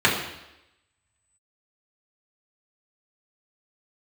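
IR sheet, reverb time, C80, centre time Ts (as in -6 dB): 0.90 s, 7.5 dB, 38 ms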